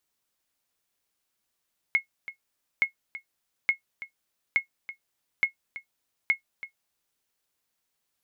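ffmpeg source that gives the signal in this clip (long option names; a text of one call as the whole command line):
ffmpeg -f lavfi -i "aevalsrc='0.224*(sin(2*PI*2170*mod(t,0.87))*exp(-6.91*mod(t,0.87)/0.11)+0.168*sin(2*PI*2170*max(mod(t,0.87)-0.33,0))*exp(-6.91*max(mod(t,0.87)-0.33,0)/0.11))':duration=5.22:sample_rate=44100" out.wav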